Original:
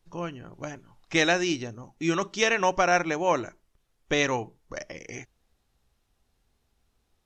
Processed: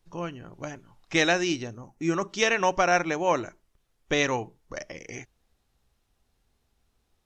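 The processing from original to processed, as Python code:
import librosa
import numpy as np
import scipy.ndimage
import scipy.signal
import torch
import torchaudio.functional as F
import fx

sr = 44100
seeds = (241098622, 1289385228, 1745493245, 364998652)

y = fx.peak_eq(x, sr, hz=3500.0, db=fx.line((1.77, -7.5), (2.28, -14.5)), octaves=0.99, at=(1.77, 2.28), fade=0.02)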